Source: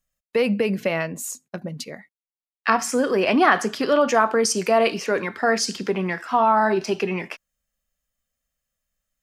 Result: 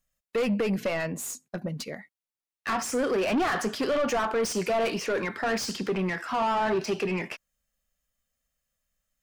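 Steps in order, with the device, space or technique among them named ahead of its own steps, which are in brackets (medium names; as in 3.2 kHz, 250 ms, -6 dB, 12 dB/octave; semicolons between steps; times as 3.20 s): saturation between pre-emphasis and de-emphasis (treble shelf 2 kHz +10.5 dB; saturation -21 dBFS, distortion -6 dB; treble shelf 2 kHz -10.5 dB)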